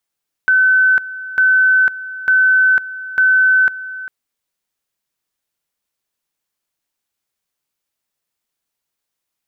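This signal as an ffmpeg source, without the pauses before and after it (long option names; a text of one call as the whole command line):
ffmpeg -f lavfi -i "aevalsrc='pow(10,(-8.5-16.5*gte(mod(t,0.9),0.5))/20)*sin(2*PI*1520*t)':duration=3.6:sample_rate=44100" out.wav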